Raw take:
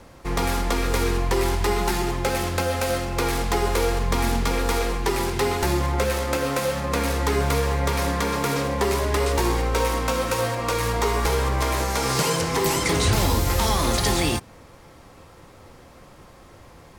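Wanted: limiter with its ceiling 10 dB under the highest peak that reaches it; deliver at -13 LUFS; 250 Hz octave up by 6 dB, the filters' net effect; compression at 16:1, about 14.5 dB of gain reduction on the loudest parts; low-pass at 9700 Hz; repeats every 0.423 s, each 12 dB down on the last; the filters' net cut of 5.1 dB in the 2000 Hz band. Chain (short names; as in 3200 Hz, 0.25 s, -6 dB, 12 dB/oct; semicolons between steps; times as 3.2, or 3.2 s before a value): LPF 9700 Hz; bell 250 Hz +8 dB; bell 2000 Hz -6.5 dB; compressor 16:1, threshold -30 dBFS; limiter -31 dBFS; feedback echo 0.423 s, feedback 25%, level -12 dB; gain +27 dB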